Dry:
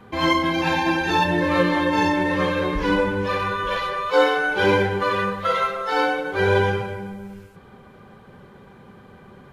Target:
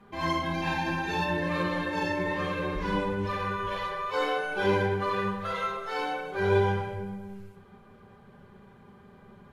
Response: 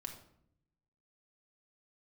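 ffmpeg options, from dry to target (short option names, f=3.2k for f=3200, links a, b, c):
-filter_complex "[1:a]atrim=start_sample=2205,atrim=end_sample=6174,asetrate=33075,aresample=44100[a];[0:a][a]afir=irnorm=-1:irlink=0,volume=-7dB"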